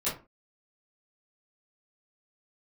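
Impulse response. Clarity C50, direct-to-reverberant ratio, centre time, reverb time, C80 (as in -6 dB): 7.5 dB, -12.0 dB, 32 ms, 0.30 s, 14.5 dB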